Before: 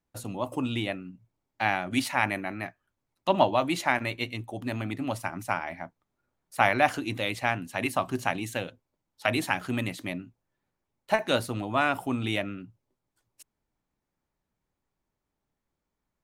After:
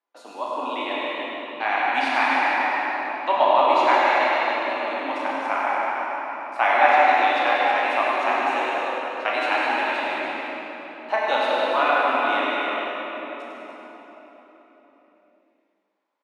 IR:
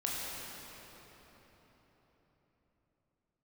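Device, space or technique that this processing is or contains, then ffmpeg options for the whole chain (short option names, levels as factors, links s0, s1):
station announcement: -filter_complex "[0:a]highpass=f=250:w=0.5412,highpass=f=250:w=1.3066,highpass=470,lowpass=3700,equalizer=f=1000:t=o:w=0.34:g=5.5,aecho=1:1:151.6|207|288.6:0.316|0.316|0.355,aecho=1:1:100:0.473[s0];[1:a]atrim=start_sample=2205[s1];[s0][s1]afir=irnorm=-1:irlink=0,volume=1.12"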